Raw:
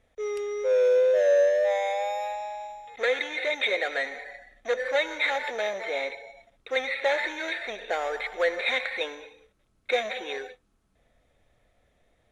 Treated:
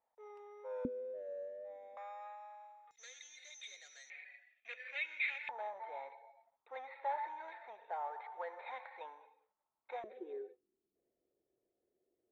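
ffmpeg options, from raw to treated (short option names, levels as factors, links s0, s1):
-af "asetnsamples=n=441:p=0,asendcmd='0.85 bandpass f 250;1.97 bandpass f 1200;2.91 bandpass f 6100;4.1 bandpass f 2500;5.49 bandpass f 900;10.04 bandpass f 370',bandpass=f=900:t=q:w=9.4:csg=0"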